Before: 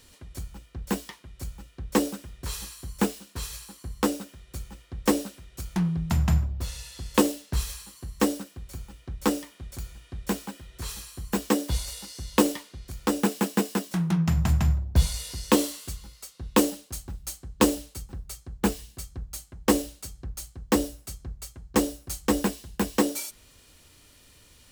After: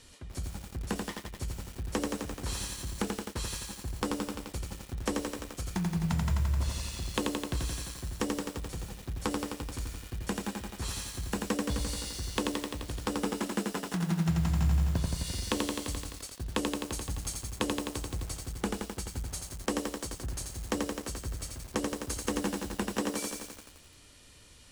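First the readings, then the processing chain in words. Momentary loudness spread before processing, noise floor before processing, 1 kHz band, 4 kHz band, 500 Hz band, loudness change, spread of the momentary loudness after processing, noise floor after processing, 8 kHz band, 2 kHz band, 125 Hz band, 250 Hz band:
17 LU, −56 dBFS, −5.5 dB, −2.5 dB, −7.0 dB, −6.5 dB, 10 LU, −54 dBFS, −3.5 dB, −3.5 dB, −4.0 dB, −7.0 dB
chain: low-pass filter 11,000 Hz 24 dB per octave
downward compressor 4 to 1, threshold −31 dBFS, peak gain reduction 15 dB
feedback echo at a low word length 86 ms, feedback 80%, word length 8 bits, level −3 dB

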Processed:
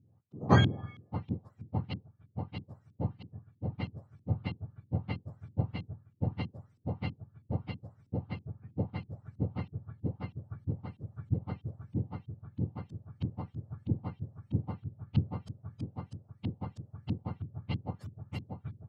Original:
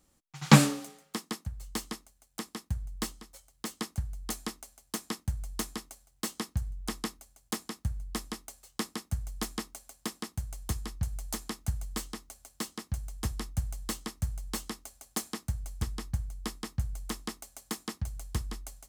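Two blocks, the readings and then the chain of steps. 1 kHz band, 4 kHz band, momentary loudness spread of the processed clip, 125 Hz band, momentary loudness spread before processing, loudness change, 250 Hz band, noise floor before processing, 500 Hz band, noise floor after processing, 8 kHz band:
−3.0 dB, −8.5 dB, 10 LU, +1.0 dB, 8 LU, −2.5 dB, −3.0 dB, −69 dBFS, −0.5 dB, −67 dBFS, below −25 dB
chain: frequency axis turned over on the octave scale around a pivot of 970 Hz
auto-filter low-pass saw up 3.1 Hz 250–3,200 Hz
level −3 dB

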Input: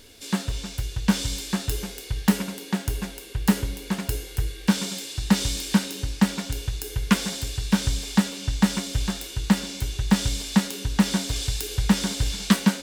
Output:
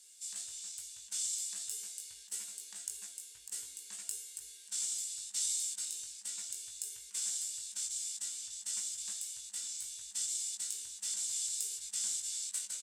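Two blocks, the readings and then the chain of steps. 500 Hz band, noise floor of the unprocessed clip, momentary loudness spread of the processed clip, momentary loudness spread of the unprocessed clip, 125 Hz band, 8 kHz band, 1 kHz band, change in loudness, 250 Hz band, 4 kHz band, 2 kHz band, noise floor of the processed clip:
below −35 dB, −40 dBFS, 8 LU, 8 LU, below −40 dB, −1.0 dB, below −30 dB, −11.5 dB, below −40 dB, −13.0 dB, −25.0 dB, −54 dBFS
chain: compressor whose output falls as the input rises −23 dBFS, ratio −0.5
resonant band-pass 7,900 Hz, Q 4
double-tracking delay 19 ms −4.5 dB

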